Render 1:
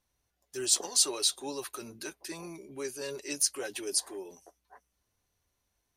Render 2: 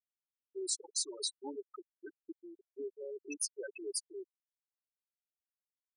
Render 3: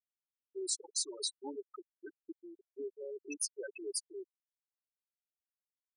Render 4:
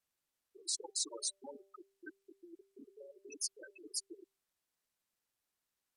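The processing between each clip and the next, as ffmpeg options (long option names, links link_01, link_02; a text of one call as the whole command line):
ffmpeg -i in.wav -af "afftfilt=real='re*gte(hypot(re,im),0.0708)':imag='im*gte(hypot(re,im),0.0708)':win_size=1024:overlap=0.75,acompressor=threshold=-32dB:ratio=2.5,volume=-3dB" out.wav
ffmpeg -i in.wav -af anull out.wav
ffmpeg -i in.wav -af "afftfilt=real='re*lt(hypot(re,im),0.0398)':imag='im*lt(hypot(re,im),0.0398)':win_size=1024:overlap=0.75,bandreject=frequency=195.9:width_type=h:width=4,bandreject=frequency=391.8:width_type=h:width=4,bandreject=frequency=587.7:width_type=h:width=4,bandreject=frequency=783.6:width_type=h:width=4,volume=5.5dB" -ar 32000 -c:a sbc -b:a 128k out.sbc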